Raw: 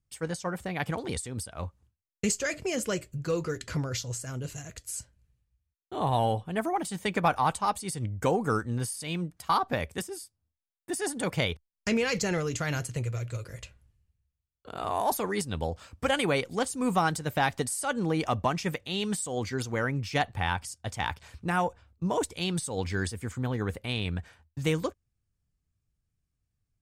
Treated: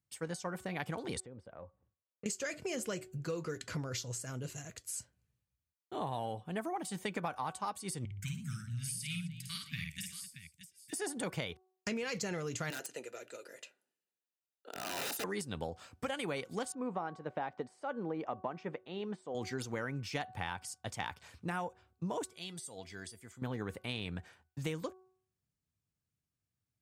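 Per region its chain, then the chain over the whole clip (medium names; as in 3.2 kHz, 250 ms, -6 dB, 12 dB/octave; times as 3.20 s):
1.20–2.26 s: low-pass 1.6 kHz + peaking EQ 540 Hz +11.5 dB 0.31 oct + compression 3:1, threshold -44 dBFS
8.05–10.93 s: elliptic band-stop 160–2200 Hz, stop band 70 dB + multi-tap echo 52/118/257/627 ms -4/-15.5/-15.5/-11.5 dB
12.70–15.24 s: high-pass 290 Hz 24 dB/octave + integer overflow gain 26 dB + comb of notches 1.1 kHz
16.72–19.35 s: band-pass filter 560 Hz, Q 0.68 + distance through air 82 m
22.30–23.42 s: treble shelf 2.1 kHz +6.5 dB + feedback comb 670 Hz, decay 0.16 s, harmonics odd, mix 80%
whole clip: high-pass 120 Hz 12 dB/octave; de-hum 373.1 Hz, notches 4; compression, threshold -30 dBFS; trim -4 dB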